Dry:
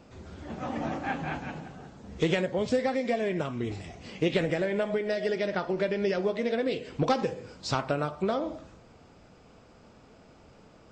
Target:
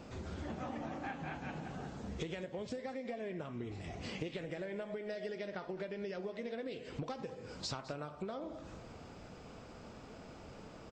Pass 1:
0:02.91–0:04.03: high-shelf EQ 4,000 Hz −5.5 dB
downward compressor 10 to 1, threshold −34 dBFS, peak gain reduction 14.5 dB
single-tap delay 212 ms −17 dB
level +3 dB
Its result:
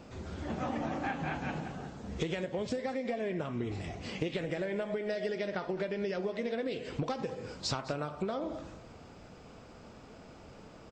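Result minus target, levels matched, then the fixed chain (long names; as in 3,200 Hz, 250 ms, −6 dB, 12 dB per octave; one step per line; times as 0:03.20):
downward compressor: peak gain reduction −7 dB
0:02.91–0:04.03: high-shelf EQ 4,000 Hz −5.5 dB
downward compressor 10 to 1, threshold −42 dBFS, peak gain reduction 21.5 dB
single-tap delay 212 ms −17 dB
level +3 dB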